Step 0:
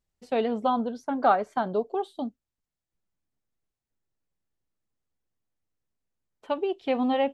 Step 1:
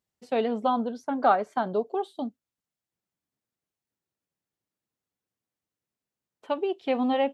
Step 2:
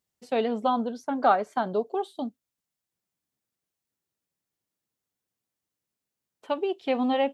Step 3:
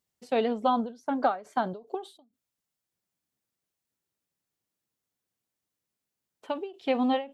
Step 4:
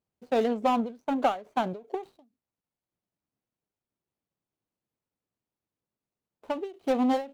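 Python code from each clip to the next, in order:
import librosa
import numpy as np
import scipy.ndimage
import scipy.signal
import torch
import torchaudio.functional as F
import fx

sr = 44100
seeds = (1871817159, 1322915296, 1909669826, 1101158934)

y1 = scipy.signal.sosfilt(scipy.signal.butter(2, 120.0, 'highpass', fs=sr, output='sos'), x)
y2 = fx.high_shelf(y1, sr, hz=4300.0, db=5.0)
y3 = fx.end_taper(y2, sr, db_per_s=170.0)
y4 = scipy.signal.medfilt(y3, 25)
y4 = y4 * 10.0 ** (1.5 / 20.0)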